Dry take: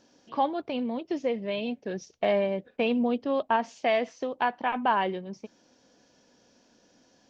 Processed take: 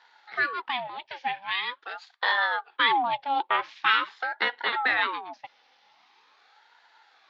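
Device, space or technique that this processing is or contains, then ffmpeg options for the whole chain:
voice changer toy: -filter_complex "[0:a]asettb=1/sr,asplit=3[a][b][c];[a]atrim=end=0.874[d];[b]atrim=start=0.87:end=2.38,asetpts=PTS-STARTPTS,afade=t=in:d=0.004:c=qsin,afade=t=out:st=1.506:d=0.004:c=qsin,equalizer=f=130:t=o:w=2.7:g=-13[e];[c]atrim=start=2.376[f];[d][e]acrossfade=d=0.004:c1=hsin:c2=qsin[g];[g][f]acrossfade=d=0.004:c1=qsin:c2=hsin,lowpass=5.9k,highshelf=f=1.7k:t=q:w=1.5:g=8.5,aeval=exprs='val(0)*sin(2*PI*730*n/s+730*0.65/0.44*sin(2*PI*0.44*n/s))':c=same,highpass=570,equalizer=f=590:t=q:w=4:g=-10,equalizer=f=840:t=q:w=4:g=8,equalizer=f=1.7k:t=q:w=4:g=3,equalizer=f=2.8k:t=q:w=4:g=-4,lowpass=f=3.8k:w=0.5412,lowpass=f=3.8k:w=1.3066,volume=4dB"

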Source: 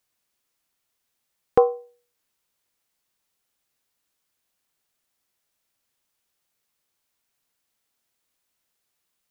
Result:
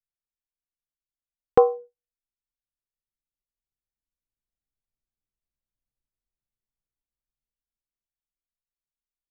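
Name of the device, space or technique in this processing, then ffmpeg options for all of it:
voice memo with heavy noise removal: -af "anlmdn=0.1,dynaudnorm=f=260:g=17:m=12.5dB"

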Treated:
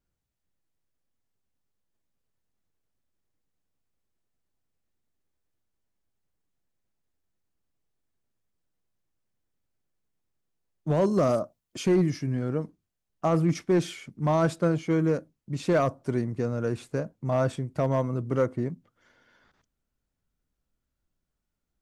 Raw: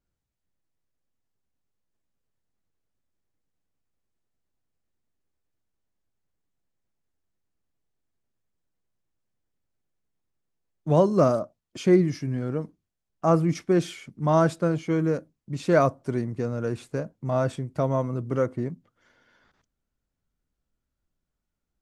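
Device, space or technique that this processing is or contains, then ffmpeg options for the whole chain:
limiter into clipper: -filter_complex "[0:a]asettb=1/sr,asplit=3[a][b][c];[a]atrim=end=11.014[d];[b]atrim=start=11.01:end=12.11,asetpts=PTS-STARTPTS,afade=t=in:d=0.004:c=qsin,afade=t=out:st=1.096:d=0.004:c=qsin,highshelf=f=8k:g=7.5[e];[c]atrim=start=12.106[f];[d][e]acrossfade=d=0.004:c1=hsin:c2=qsin[g];[g][f]acrossfade=d=0.004:c1=qsin:c2=hsin,alimiter=limit=-13.5dB:level=0:latency=1:release=32,asoftclip=type=hard:threshold=-16dB"

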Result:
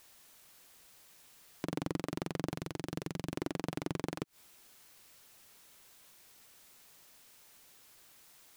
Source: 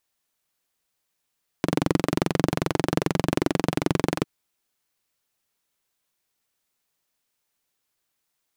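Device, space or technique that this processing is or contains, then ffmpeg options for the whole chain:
de-esser from a sidechain: -filter_complex "[0:a]asplit=2[a][b];[b]highpass=4.3k,apad=whole_len=377884[c];[a][c]sidechaincompress=threshold=-60dB:ratio=8:attack=1.5:release=74,asettb=1/sr,asplit=3[d][e][f];[d]atrim=end=2.544[g];[e]atrim=start=2.54:end=3.34,asetpts=PTS-STARTPTS,afade=t=in:d=0.004:c=qsin,afade=t=out:st=0.796:d=0.004:c=qsin,equalizer=f=830:t=o:w=2.5:g=-5[h];[f]atrim=start=3.336[i];[g][h]acrossfade=d=0.004:c1=hsin:c2=qsin[j];[j][i]acrossfade=d=0.004:c1=qsin:c2=hsin,volume=17.5dB"

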